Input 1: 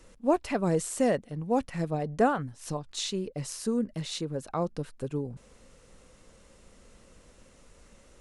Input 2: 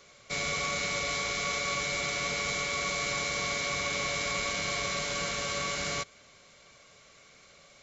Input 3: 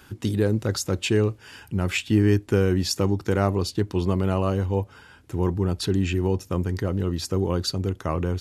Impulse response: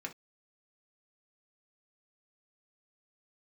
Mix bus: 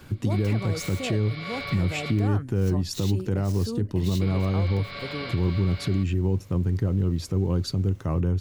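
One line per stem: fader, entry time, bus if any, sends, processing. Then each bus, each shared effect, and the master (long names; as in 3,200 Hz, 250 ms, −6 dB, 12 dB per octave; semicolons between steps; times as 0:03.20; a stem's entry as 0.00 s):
−1.5 dB, 0.00 s, no bus, no send, running median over 5 samples; high-shelf EQ 6,900 Hz +9 dB; brickwall limiter −23.5 dBFS, peak gain reduction 11 dB
−2.0 dB, 0.00 s, muted 0:02.28–0:04.21, bus A, no send, Butterworth low-pass 4,900 Hz 96 dB per octave
−3.0 dB, 0.00 s, bus A, no send, parametric band 110 Hz +14 dB 2.9 octaves
bus A: 0.0 dB, high-pass filter 73 Hz 12 dB per octave; downward compressor 2 to 1, threshold −25 dBFS, peak gain reduction 10 dB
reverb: not used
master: brickwall limiter −15.5 dBFS, peak gain reduction 5 dB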